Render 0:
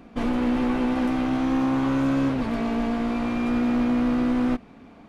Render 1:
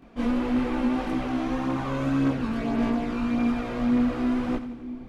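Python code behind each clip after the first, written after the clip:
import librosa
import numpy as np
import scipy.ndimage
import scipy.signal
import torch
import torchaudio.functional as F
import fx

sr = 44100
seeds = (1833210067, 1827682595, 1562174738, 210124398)

y = fx.chorus_voices(x, sr, voices=2, hz=0.88, base_ms=23, depth_ms=2.1, mix_pct=65)
y = fx.echo_split(y, sr, split_hz=410.0, low_ms=610, high_ms=87, feedback_pct=52, wet_db=-12.0)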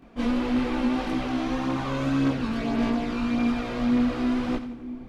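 y = fx.dynamic_eq(x, sr, hz=4300.0, q=0.88, threshold_db=-53.0, ratio=4.0, max_db=6)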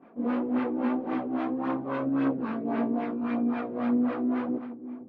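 y = scipy.signal.sosfilt(scipy.signal.butter(2, 260.0, 'highpass', fs=sr, output='sos'), x)
y = fx.filter_lfo_lowpass(y, sr, shape='sine', hz=3.7, low_hz=350.0, high_hz=1800.0, q=0.97)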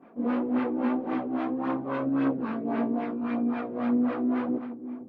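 y = fx.rider(x, sr, range_db=4, speed_s=2.0)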